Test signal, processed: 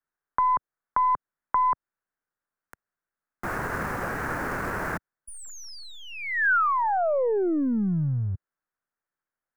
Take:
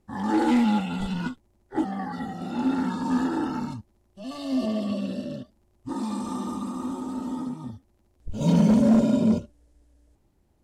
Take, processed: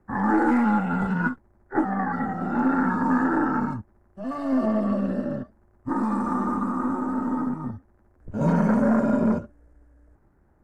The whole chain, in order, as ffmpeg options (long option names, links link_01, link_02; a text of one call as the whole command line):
ffmpeg -i in.wav -filter_complex "[0:a]aeval=exprs='if(lt(val(0),0),0.708*val(0),val(0))':channel_layout=same,acrossover=split=95|630|4000[link_01][link_02][link_03][link_04];[link_01]acompressor=threshold=-48dB:ratio=4[link_05];[link_02]acompressor=threshold=-26dB:ratio=4[link_06];[link_03]acompressor=threshold=-34dB:ratio=4[link_07];[link_04]acompressor=threshold=-35dB:ratio=4[link_08];[link_05][link_06][link_07][link_08]amix=inputs=4:normalize=0,highshelf=frequency=2300:width_type=q:width=3:gain=-13.5,volume=6dB" out.wav